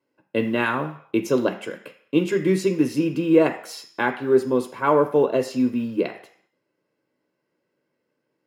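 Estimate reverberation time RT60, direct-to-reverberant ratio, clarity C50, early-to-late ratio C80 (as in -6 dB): 0.60 s, 6.5 dB, 12.0 dB, 15.0 dB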